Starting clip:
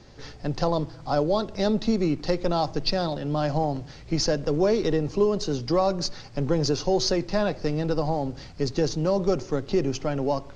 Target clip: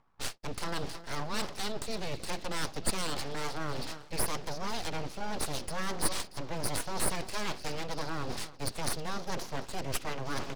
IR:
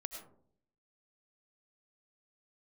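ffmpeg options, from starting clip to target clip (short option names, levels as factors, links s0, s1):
-filter_complex "[0:a]agate=range=0.00282:threshold=0.0112:ratio=16:detection=peak,acrossover=split=440|660[s0][s1][s2];[s1]acompressor=mode=upward:threshold=0.00794:ratio=2.5[s3];[s0][s3][s2]amix=inputs=3:normalize=0,aecho=1:1:316|632|948|1264:0.112|0.0595|0.0315|0.0167,areverse,acompressor=threshold=0.02:ratio=8,areverse,equalizer=f=3400:t=o:w=2.7:g=12.5,aeval=exprs='abs(val(0))':c=same,volume=1.33"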